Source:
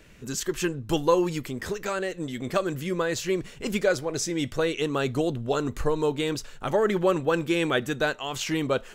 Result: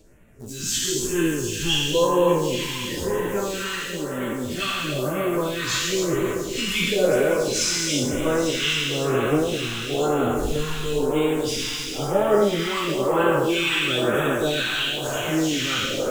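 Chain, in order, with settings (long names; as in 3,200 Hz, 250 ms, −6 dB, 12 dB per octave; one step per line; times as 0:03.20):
peak hold with a decay on every bin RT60 1.54 s
dynamic equaliser 3,000 Hz, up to +8 dB, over −45 dBFS, Q 2.3
time stretch by phase vocoder 1.8×
in parallel at −5 dB: bit-depth reduction 6 bits, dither none
on the sum: feedback echo with a high-pass in the loop 281 ms, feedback 78%, high-pass 170 Hz, level −8 dB
all-pass phaser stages 2, 1 Hz, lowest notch 520–4,600 Hz
level −1 dB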